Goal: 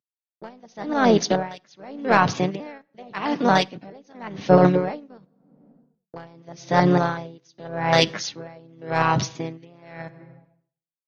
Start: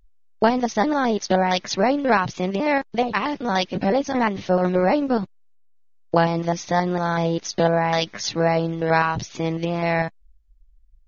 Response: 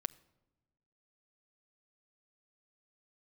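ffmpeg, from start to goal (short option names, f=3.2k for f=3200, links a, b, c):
-filter_complex "[0:a]acontrast=24,highpass=f=120:w=0.5412,highpass=f=120:w=1.3066,aeval=exprs='1.06*(cos(1*acos(clip(val(0)/1.06,-1,1)))-cos(1*PI/2))+0.0841*(cos(3*acos(clip(val(0)/1.06,-1,1)))-cos(3*PI/2))':c=same,agate=range=-33dB:threshold=-30dB:ratio=3:detection=peak,asplit=3[a][b][c];[b]asetrate=35002,aresample=44100,atempo=1.25992,volume=-9dB[d];[c]asetrate=37084,aresample=44100,atempo=1.18921,volume=-17dB[e];[a][d][e]amix=inputs=3:normalize=0,asplit=2[f][g];[1:a]atrim=start_sample=2205[h];[g][h]afir=irnorm=-1:irlink=0,volume=13.5dB[i];[f][i]amix=inputs=2:normalize=0,aeval=exprs='val(0)*pow(10,-32*(0.5-0.5*cos(2*PI*0.87*n/s))/20)':c=same,volume=-11dB"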